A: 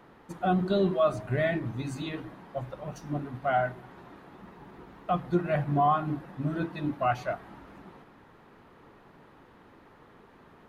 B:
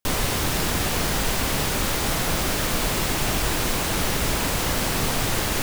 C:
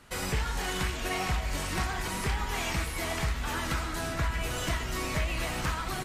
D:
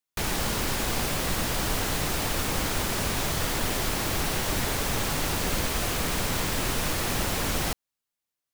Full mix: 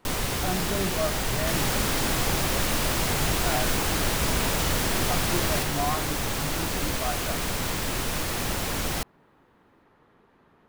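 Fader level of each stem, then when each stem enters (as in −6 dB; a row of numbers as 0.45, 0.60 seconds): −5.5, −4.5, −10.0, −1.0 decibels; 0.00, 0.00, 0.00, 1.30 seconds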